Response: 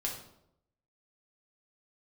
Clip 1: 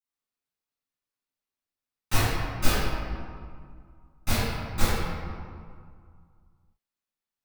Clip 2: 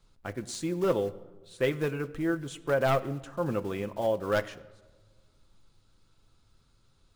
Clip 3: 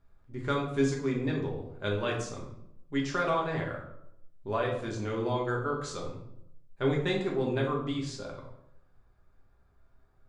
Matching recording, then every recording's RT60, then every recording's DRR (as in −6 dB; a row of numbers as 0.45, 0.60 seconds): 3; 2.1, 1.3, 0.80 seconds; −16.0, 8.0, −2.0 decibels